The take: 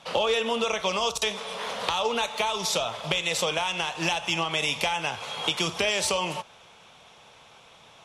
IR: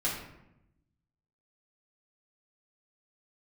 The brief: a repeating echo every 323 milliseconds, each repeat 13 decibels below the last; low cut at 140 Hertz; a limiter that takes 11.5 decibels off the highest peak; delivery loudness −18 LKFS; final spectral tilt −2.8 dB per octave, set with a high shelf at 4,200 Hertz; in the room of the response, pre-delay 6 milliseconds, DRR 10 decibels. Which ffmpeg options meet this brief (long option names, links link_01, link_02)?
-filter_complex "[0:a]highpass=140,highshelf=frequency=4200:gain=-7.5,alimiter=limit=-20dB:level=0:latency=1,aecho=1:1:323|646|969:0.224|0.0493|0.0108,asplit=2[link_01][link_02];[1:a]atrim=start_sample=2205,adelay=6[link_03];[link_02][link_03]afir=irnorm=-1:irlink=0,volume=-17dB[link_04];[link_01][link_04]amix=inputs=2:normalize=0,volume=12dB"